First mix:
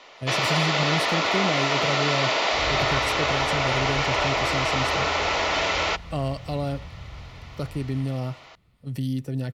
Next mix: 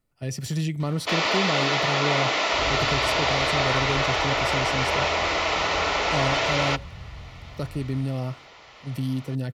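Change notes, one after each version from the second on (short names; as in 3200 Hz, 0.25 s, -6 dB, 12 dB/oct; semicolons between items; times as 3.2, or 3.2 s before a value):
first sound: entry +0.80 s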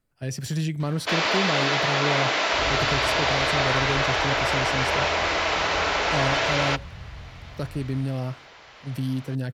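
master: remove Butterworth band-stop 1600 Hz, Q 7.7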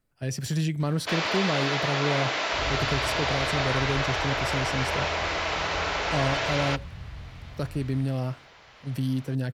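first sound -4.5 dB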